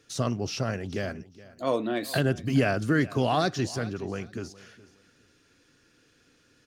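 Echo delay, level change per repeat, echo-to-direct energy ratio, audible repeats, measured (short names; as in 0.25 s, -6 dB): 0.42 s, -12.5 dB, -19.0 dB, 2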